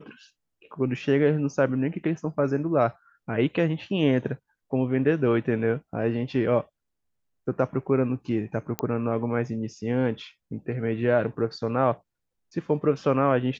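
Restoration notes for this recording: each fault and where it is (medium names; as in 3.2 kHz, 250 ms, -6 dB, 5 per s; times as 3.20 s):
8.79 s: pop -11 dBFS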